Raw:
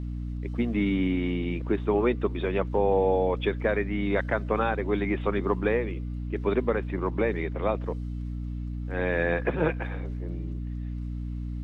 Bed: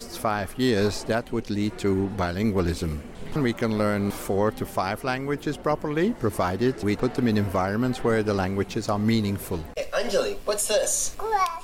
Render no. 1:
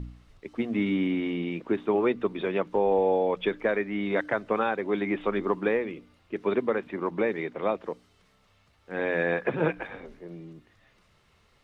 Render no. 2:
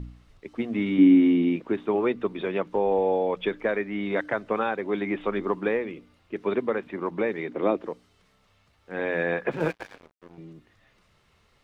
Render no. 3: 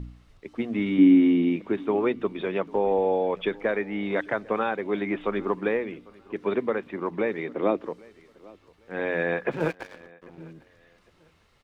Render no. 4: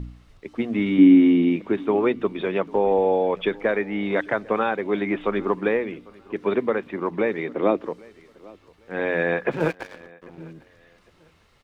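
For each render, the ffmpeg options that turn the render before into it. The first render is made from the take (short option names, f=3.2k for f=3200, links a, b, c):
-af "bandreject=f=60:t=h:w=4,bandreject=f=120:t=h:w=4,bandreject=f=180:t=h:w=4,bandreject=f=240:t=h:w=4,bandreject=f=300:t=h:w=4"
-filter_complex "[0:a]asettb=1/sr,asplit=3[a][b][c];[a]atrim=end=0.984[d];[b]atrim=start=0.98:end=1.56,asetpts=PTS-STARTPTS,afade=t=in:d=0.004:c=qsin,afade=t=out:st=0.576:d=0.004:c=qsin,equalizer=f=280:t=o:w=0.61:g=13[e];[c]atrim=start=1.556[f];[d][e]acrossfade=d=0.004:c1=hsin:c2=qsin[g];[g][f]acrossfade=d=0.004:c1=qsin:c2=hsin,asettb=1/sr,asplit=3[h][i][j];[h]atrim=end=7.484[k];[i]atrim=start=7.48:end=7.88,asetpts=PTS-STARTPTS,afade=t=in:d=0.004:c=qsin,afade=t=out:st=0.396:d=0.004:c=qsin,equalizer=f=310:w=1.5:g=11[l];[j]atrim=start=7.876[m];[k][l]acrossfade=d=0.004:c1=hsin:c2=qsin[n];[n][m]acrossfade=d=0.004:c1=qsin:c2=hsin,asettb=1/sr,asplit=3[o][p][q];[o]atrim=end=9.514[r];[p]atrim=start=9.51:end=10.38,asetpts=PTS-STARTPTS,afade=t=in:d=0.004:c=qsin,afade=t=out:st=0.866:d=0.004:c=qsin,aeval=exprs='sgn(val(0))*max(abs(val(0))-0.00891,0)':c=same[s];[q]atrim=start=10.376[t];[r][s]acrossfade=d=0.004:c1=hsin:c2=qsin[u];[u][t]acrossfade=d=0.004:c1=qsin:c2=hsin"
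-af "aecho=1:1:799|1598:0.0631|0.0177"
-af "volume=3.5dB"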